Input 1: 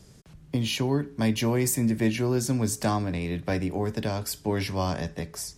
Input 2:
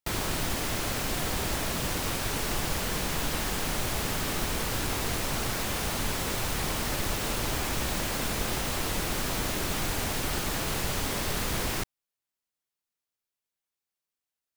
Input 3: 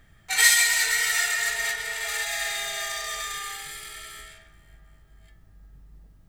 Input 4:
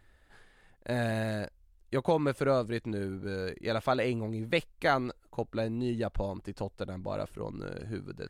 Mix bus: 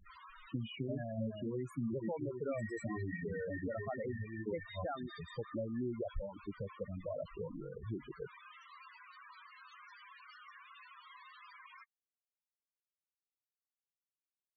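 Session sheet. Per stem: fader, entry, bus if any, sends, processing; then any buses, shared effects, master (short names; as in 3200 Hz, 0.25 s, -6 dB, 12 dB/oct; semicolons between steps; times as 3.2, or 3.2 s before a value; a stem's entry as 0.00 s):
-7.0 dB, 0.00 s, bus A, no send, de-esser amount 80%; bell 790 Hz -4.5 dB 0.25 oct; gate -38 dBFS, range -9 dB
-10.5 dB, 0.00 s, no bus, no send, elliptic high-pass 1000 Hz, stop band 70 dB
-12.5 dB, 2.20 s, no bus, no send, compressor 6:1, threshold -26 dBFS, peak gain reduction 13 dB; hum 50 Hz, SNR 30 dB; rotary speaker horn 5 Hz
0.0 dB, 0.00 s, bus A, no send, high shelf 3300 Hz -5.5 dB
bus A: 0.0 dB, reverb removal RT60 1.5 s; compressor 8:1, threshold -34 dBFS, peak gain reduction 12.5 dB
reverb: off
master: loudest bins only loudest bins 8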